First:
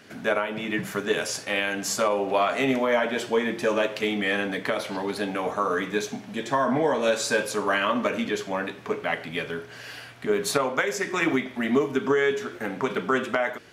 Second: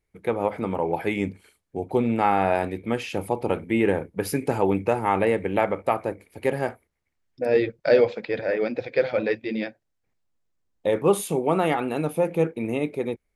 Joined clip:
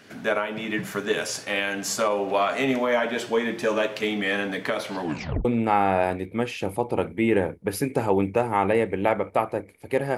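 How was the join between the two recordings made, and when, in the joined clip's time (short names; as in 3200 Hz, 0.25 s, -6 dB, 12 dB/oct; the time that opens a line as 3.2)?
first
5 tape stop 0.45 s
5.45 switch to second from 1.97 s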